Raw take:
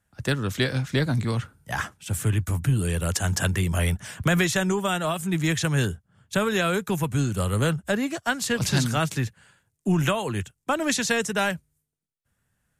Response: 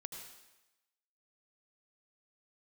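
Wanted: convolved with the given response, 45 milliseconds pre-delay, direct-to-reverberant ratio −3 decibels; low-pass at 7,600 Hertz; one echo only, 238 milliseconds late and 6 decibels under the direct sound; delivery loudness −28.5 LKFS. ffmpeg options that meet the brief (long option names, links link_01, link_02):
-filter_complex "[0:a]lowpass=7600,aecho=1:1:238:0.501,asplit=2[link_01][link_02];[1:a]atrim=start_sample=2205,adelay=45[link_03];[link_02][link_03]afir=irnorm=-1:irlink=0,volume=6dB[link_04];[link_01][link_04]amix=inputs=2:normalize=0,volume=-9dB"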